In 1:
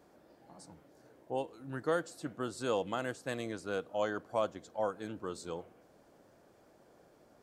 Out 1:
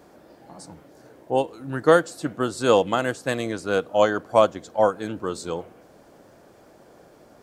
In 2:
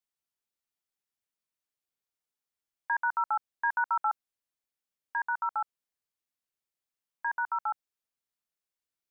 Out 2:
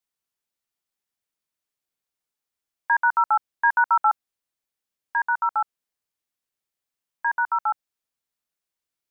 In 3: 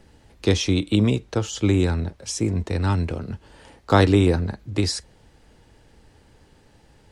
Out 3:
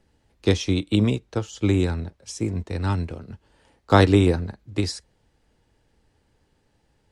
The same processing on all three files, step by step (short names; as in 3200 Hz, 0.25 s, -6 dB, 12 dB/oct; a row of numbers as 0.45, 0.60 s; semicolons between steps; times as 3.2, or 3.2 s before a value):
upward expander 1.5:1, over -38 dBFS; match loudness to -23 LUFS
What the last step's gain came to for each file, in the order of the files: +16.5, +9.5, +1.0 dB